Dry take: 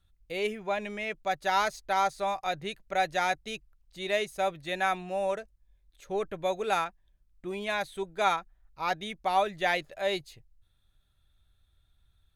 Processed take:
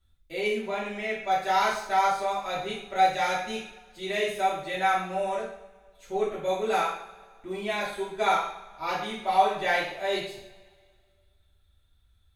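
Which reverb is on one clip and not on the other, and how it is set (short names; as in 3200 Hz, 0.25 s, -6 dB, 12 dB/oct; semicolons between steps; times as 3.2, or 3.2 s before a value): two-slope reverb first 0.58 s, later 1.9 s, from -19 dB, DRR -8 dB; gain -6.5 dB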